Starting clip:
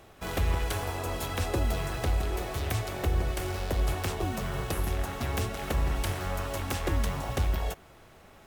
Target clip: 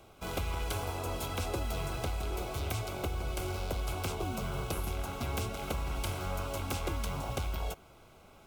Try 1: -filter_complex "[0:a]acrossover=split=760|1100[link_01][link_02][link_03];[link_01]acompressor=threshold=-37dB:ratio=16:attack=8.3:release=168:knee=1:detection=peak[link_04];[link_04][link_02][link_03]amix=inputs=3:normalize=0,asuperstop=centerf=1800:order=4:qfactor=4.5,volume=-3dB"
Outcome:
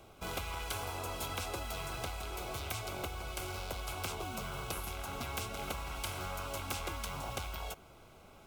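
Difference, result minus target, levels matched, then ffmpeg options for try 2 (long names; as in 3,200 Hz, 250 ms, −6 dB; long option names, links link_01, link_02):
downward compressor: peak gain reduction +8.5 dB
-filter_complex "[0:a]acrossover=split=760|1100[link_01][link_02][link_03];[link_01]acompressor=threshold=-28dB:ratio=16:attack=8.3:release=168:knee=1:detection=peak[link_04];[link_04][link_02][link_03]amix=inputs=3:normalize=0,asuperstop=centerf=1800:order=4:qfactor=4.5,volume=-3dB"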